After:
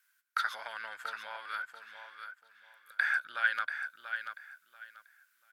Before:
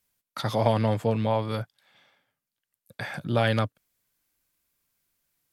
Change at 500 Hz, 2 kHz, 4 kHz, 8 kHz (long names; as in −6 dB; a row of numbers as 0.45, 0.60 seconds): −26.5 dB, +6.0 dB, −7.0 dB, can't be measured